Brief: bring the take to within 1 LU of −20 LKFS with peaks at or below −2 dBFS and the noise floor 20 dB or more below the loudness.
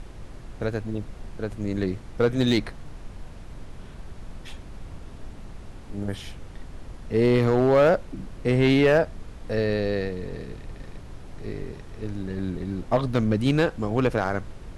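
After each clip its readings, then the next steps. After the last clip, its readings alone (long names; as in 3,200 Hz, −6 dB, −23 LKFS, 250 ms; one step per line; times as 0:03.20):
share of clipped samples 0.4%; peaks flattened at −12.5 dBFS; background noise floor −42 dBFS; target noise floor −45 dBFS; integrated loudness −24.5 LKFS; sample peak −12.5 dBFS; target loudness −20.0 LKFS
→ clipped peaks rebuilt −12.5 dBFS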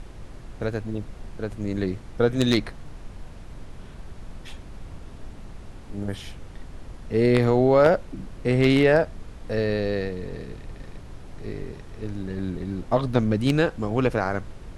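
share of clipped samples 0.0%; background noise floor −42 dBFS; target noise floor −44 dBFS
→ noise reduction from a noise print 6 dB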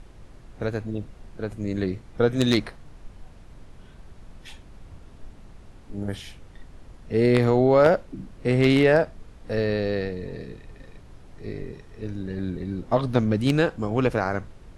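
background noise floor −48 dBFS; integrated loudness −24.0 LKFS; sample peak −3.5 dBFS; target loudness −20.0 LKFS
→ level +4 dB
brickwall limiter −2 dBFS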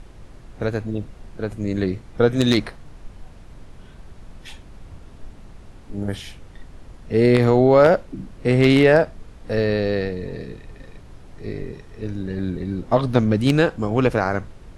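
integrated loudness −20.0 LKFS; sample peak −2.0 dBFS; background noise floor −44 dBFS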